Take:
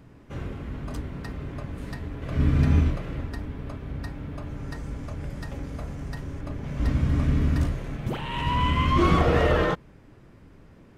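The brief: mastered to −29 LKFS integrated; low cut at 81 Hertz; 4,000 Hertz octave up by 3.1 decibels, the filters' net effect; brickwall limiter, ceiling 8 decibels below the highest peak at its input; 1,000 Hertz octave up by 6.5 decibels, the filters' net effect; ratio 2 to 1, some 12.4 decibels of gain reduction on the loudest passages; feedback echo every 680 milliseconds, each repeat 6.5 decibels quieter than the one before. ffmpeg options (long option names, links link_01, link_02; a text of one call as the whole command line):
ffmpeg -i in.wav -af "highpass=81,equalizer=frequency=1000:width_type=o:gain=7,equalizer=frequency=4000:width_type=o:gain=4,acompressor=threshold=-38dB:ratio=2,alimiter=level_in=3.5dB:limit=-24dB:level=0:latency=1,volume=-3.5dB,aecho=1:1:680|1360|2040|2720|3400|4080:0.473|0.222|0.105|0.0491|0.0231|0.0109,volume=8.5dB" out.wav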